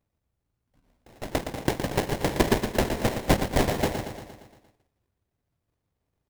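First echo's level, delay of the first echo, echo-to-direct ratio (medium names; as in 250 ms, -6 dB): -8.5 dB, 116 ms, -6.5 dB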